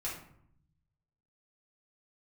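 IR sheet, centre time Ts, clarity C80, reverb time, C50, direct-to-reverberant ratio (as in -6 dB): 36 ms, 9.0 dB, 0.65 s, 4.5 dB, -7.5 dB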